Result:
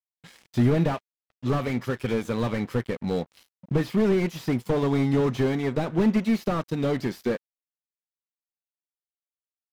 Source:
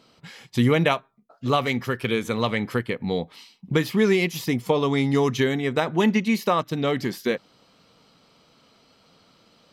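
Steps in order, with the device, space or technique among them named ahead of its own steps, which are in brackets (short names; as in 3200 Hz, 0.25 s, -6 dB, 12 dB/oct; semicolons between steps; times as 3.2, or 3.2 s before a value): early transistor amplifier (crossover distortion -43.5 dBFS; slew limiter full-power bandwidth 44 Hz)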